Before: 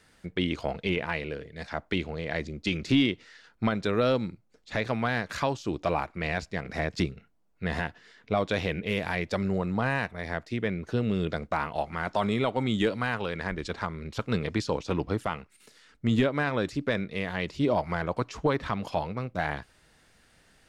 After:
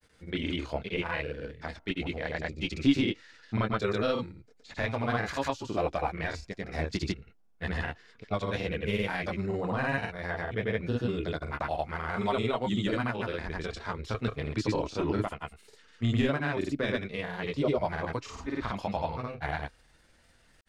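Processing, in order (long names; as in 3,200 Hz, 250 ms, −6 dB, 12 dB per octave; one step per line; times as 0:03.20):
multi-voice chorus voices 6, 0.14 Hz, delay 27 ms, depth 2.2 ms
granular cloud, pitch spread up and down by 0 semitones
level +2 dB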